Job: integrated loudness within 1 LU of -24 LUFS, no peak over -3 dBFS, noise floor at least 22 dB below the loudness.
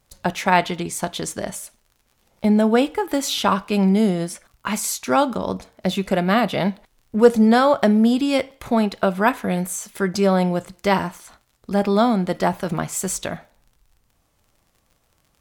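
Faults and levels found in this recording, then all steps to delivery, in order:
ticks 37/s; loudness -20.5 LUFS; peak -1.5 dBFS; loudness target -24.0 LUFS
-> de-click; gain -3.5 dB

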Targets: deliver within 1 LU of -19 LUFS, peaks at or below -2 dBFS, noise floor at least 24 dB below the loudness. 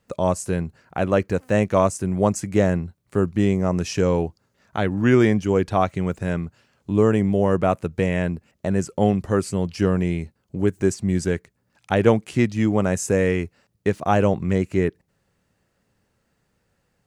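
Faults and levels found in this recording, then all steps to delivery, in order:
loudness -22.0 LUFS; peak -3.0 dBFS; loudness target -19.0 LUFS
-> gain +3 dB; limiter -2 dBFS

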